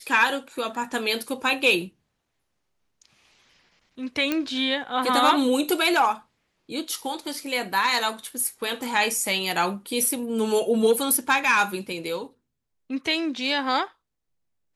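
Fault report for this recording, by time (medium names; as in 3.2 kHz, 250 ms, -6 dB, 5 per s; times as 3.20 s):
4.32 s: pop -10 dBFS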